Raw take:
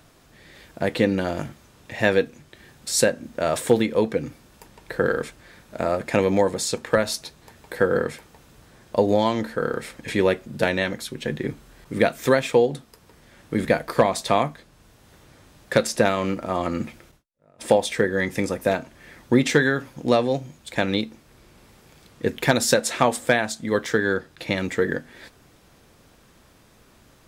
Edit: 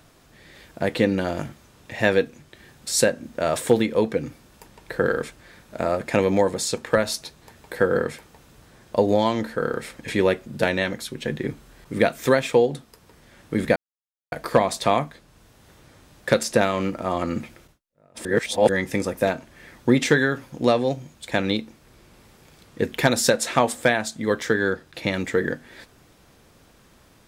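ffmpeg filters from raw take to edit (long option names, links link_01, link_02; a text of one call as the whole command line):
ffmpeg -i in.wav -filter_complex "[0:a]asplit=4[link_01][link_02][link_03][link_04];[link_01]atrim=end=13.76,asetpts=PTS-STARTPTS,afade=type=out:start_time=13.756:duration=0.004:curve=hsin,apad=pad_dur=0.56[link_05];[link_02]atrim=start=13.76:end=17.692,asetpts=PTS-STARTPTS,afade=type=in:duration=0.004:curve=hsin[link_06];[link_03]atrim=start=17.688:end=18.132,asetpts=PTS-STARTPTS,areverse[link_07];[link_04]atrim=start=18.128[link_08];[link_05][link_06]concat=n=2:v=0:a=1[link_09];[link_09][link_07]acrossfade=duration=0.004:curve1=hsin:curve2=hsin[link_10];[link_10][link_08]acrossfade=duration=0.004:curve1=hsin:curve2=hsin" out.wav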